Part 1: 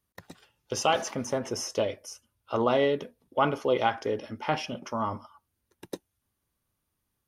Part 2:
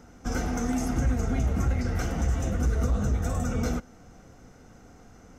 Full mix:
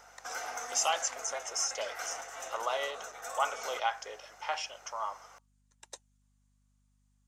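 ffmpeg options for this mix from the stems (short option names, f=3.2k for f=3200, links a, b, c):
-filter_complex "[0:a]lowpass=f=7.4k:t=q:w=6.2,volume=-4.5dB[a];[1:a]alimiter=limit=-24dB:level=0:latency=1:release=205,volume=3dB[b];[a][b]amix=inputs=2:normalize=0,highpass=f=660:w=0.5412,highpass=f=660:w=1.3066,aeval=exprs='val(0)+0.000316*(sin(2*PI*50*n/s)+sin(2*PI*2*50*n/s)/2+sin(2*PI*3*50*n/s)/3+sin(2*PI*4*50*n/s)/4+sin(2*PI*5*50*n/s)/5)':c=same"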